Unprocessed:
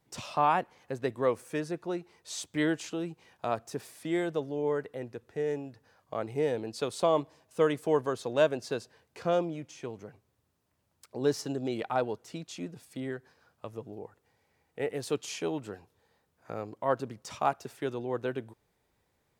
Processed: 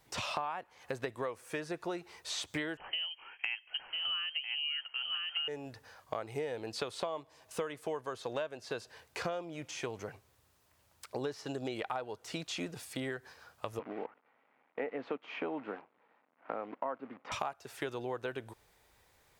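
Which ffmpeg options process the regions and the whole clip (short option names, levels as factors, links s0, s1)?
-filter_complex "[0:a]asettb=1/sr,asplit=3[s0][s1][s2];[s0]atrim=end=2.774[s3];[s1]atrim=start=2.77:end=5.48,asetpts=PTS-STARTPTS,afade=t=in:d=0.004:c=qsin,afade=t=out:st=2.706:d=0.004:c=qsin,lowshelf=f=160:g=-6.5,aecho=1:1:998:0.376,atrim=end_sample=119511,lowpass=f=2800:t=q:w=0.5098,lowpass=f=2800:t=q:w=0.6013,lowpass=f=2800:t=q:w=0.9,lowpass=f=2800:t=q:w=2.563,afreqshift=-3300[s4];[s2]atrim=start=5.476[s5];[s3][s4]acrossfade=d=0.004:c1=hsin:c2=qsin[s6];[s6][s5]acrossfade=d=0.004:c1=qsin:c2=hsin,asettb=1/sr,asplit=3[s7][s8][s9];[s7]atrim=end=13.794[s10];[s8]atrim=start=13.79:end=17.32,asetpts=PTS-STARTPTS,afade=t=in:d=0.004:c=qsin,afade=t=out:st=3.526:d=0.004:c=qsin,acrusher=bits=9:dc=4:mix=0:aa=0.000001,highpass=f=190:w=0.5412,highpass=f=190:w=1.3066,equalizer=f=260:t=q:w=4:g=7,equalizer=f=390:t=q:w=4:g=-4,equalizer=f=1700:t=q:w=4:g=-5,lowpass=f=2100:w=0.5412,lowpass=f=2100:w=1.3066[s11];[s9]atrim=start=17.316[s12];[s10][s11]acrossfade=d=0.004:c1=hsin:c2=qsin[s13];[s13][s12]acrossfade=d=0.004:c1=qsin:c2=hsin,acrossover=split=3800[s14][s15];[s15]acompressor=threshold=0.002:ratio=4:attack=1:release=60[s16];[s14][s16]amix=inputs=2:normalize=0,equalizer=f=200:w=0.5:g=-11,acompressor=threshold=0.00631:ratio=16,volume=3.35"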